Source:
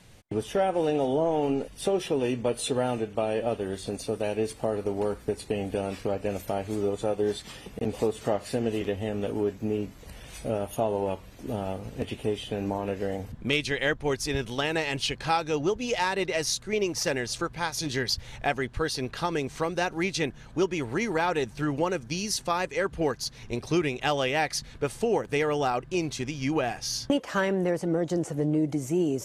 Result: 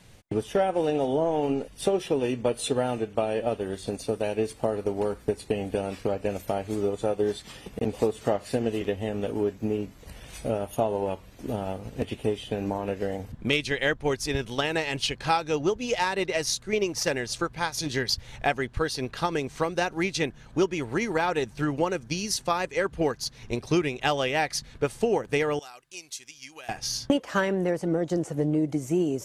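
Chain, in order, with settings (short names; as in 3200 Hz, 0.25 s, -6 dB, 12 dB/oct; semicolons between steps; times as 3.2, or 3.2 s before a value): 25.59–26.69 pre-emphasis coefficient 0.97; transient shaper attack +3 dB, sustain -2 dB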